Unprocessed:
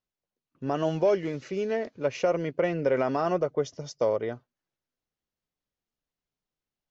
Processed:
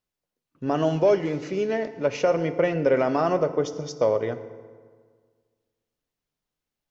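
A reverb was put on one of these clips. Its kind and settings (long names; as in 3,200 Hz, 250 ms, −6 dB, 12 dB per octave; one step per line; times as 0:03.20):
feedback delay network reverb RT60 1.7 s, low-frequency decay 1.1×, high-frequency decay 0.65×, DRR 10.5 dB
level +3.5 dB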